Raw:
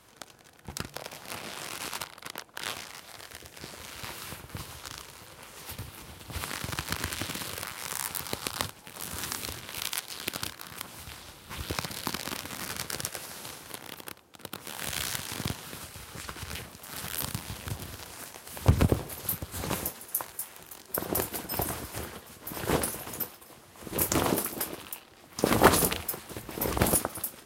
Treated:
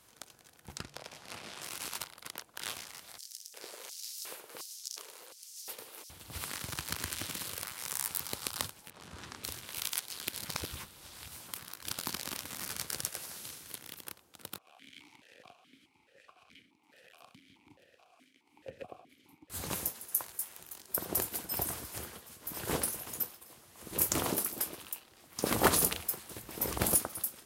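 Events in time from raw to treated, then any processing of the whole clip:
0:00.76–0:01.62: high-frequency loss of the air 50 metres
0:03.18–0:06.10: auto-filter high-pass square 1.4 Hz 450–5,400 Hz
0:08.90–0:09.44: head-to-tape spacing loss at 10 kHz 21 dB
0:10.33–0:12.02: reverse
0:13.37–0:14.05: parametric band 790 Hz −6 dB 1.4 octaves
0:14.58–0:19.50: formant filter that steps through the vowels 4.7 Hz
whole clip: high-shelf EQ 4,100 Hz +7.5 dB; level −7.5 dB

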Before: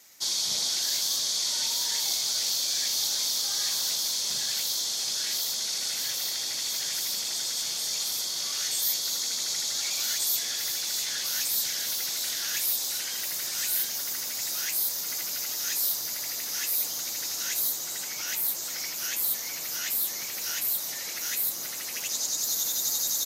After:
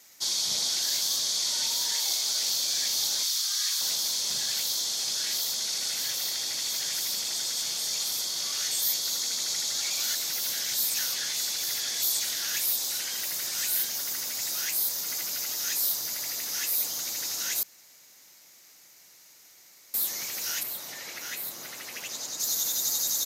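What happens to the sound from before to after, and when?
0:01.92–0:02.48: high-pass filter 390 Hz → 150 Hz
0:03.23–0:03.81: high-pass filter 1,100 Hz 24 dB per octave
0:10.15–0:12.24: reverse
0:17.63–0:19.94: fill with room tone
0:20.63–0:22.40: bass and treble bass −1 dB, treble −8 dB

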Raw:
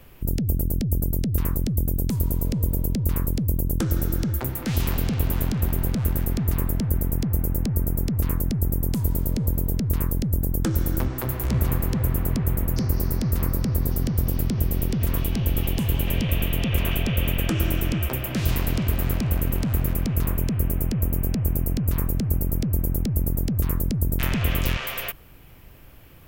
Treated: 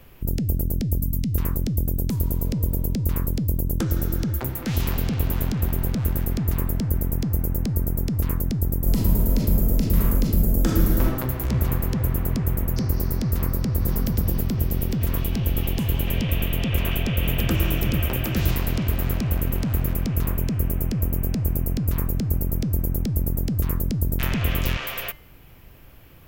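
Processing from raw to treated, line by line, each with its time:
0:00.98–0:01.31: gain on a spectral selection 300–1,900 Hz −11 dB
0:08.81–0:11.05: thrown reverb, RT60 1 s, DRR −2.5 dB
0:13.26–0:13.87: delay throw 530 ms, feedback 30%, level −4.5 dB
0:16.46–0:18.51: single-tap delay 765 ms −4.5 dB
whole clip: parametric band 8,900 Hz −4.5 dB 0.32 octaves; hum removal 298.4 Hz, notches 31

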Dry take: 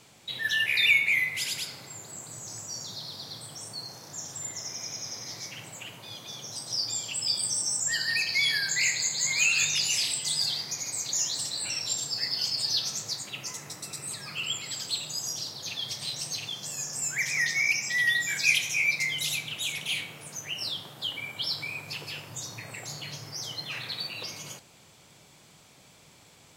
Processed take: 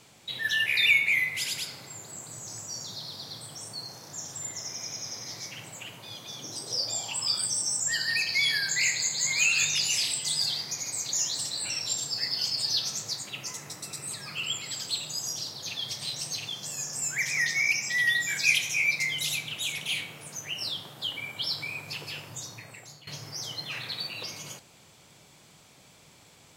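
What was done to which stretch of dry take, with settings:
0:06.39–0:07.44: parametric band 260 Hz → 1,500 Hz +14 dB 0.41 octaves
0:22.26–0:23.07: fade out, to −15.5 dB

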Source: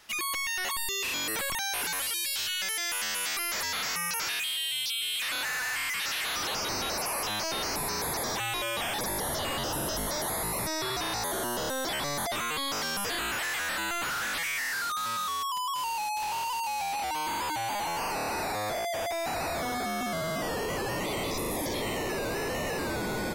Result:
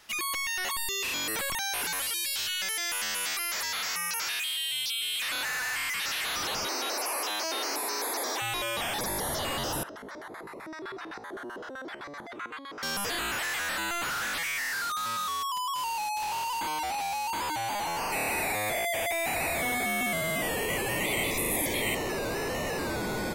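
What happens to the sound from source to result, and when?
0:03.34–0:04.70: low-shelf EQ 490 Hz −8 dB
0:06.67–0:08.42: Butterworth high-pass 260 Hz 48 dB per octave
0:09.83–0:12.83: auto-filter band-pass square 7.8 Hz 350–1,500 Hz
0:14.29–0:15.17: hard clipping −29.5 dBFS
0:16.61–0:17.33: reverse
0:18.12–0:21.95: drawn EQ curve 770 Hz 0 dB, 1,400 Hz −4 dB, 2,200 Hz +10 dB, 3,500 Hz +3 dB, 5,200 Hz −6 dB, 8,300 Hz +8 dB

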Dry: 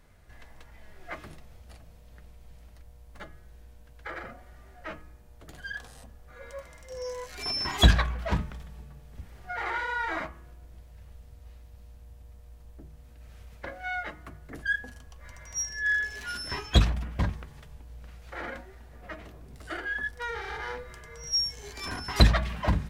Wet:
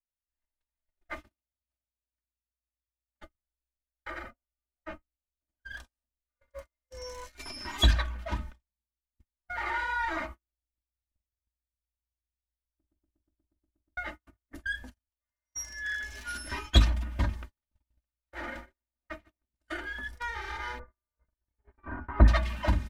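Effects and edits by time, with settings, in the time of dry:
0:01.28–0:03.22: high-pass filter 49 Hz
0:04.30–0:05.70: high-shelf EQ 2,000 Hz −7.5 dB
0:07.41–0:09.46: flanger 1.9 Hz, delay 0.9 ms, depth 4.7 ms, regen +73%
0:12.77: stutter in place 0.12 s, 10 plays
0:15.09–0:16.04: low-shelf EQ 66 Hz −10.5 dB
0:17.41–0:19.44: repeating echo 147 ms, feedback 31%, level −9 dB
0:20.79–0:22.28: low-pass filter 1,500 Hz 24 dB per octave
whole clip: noise gate −40 dBFS, range −46 dB; parametric band 480 Hz −4 dB 1 octave; comb filter 3.3 ms, depth 71%; level −2 dB

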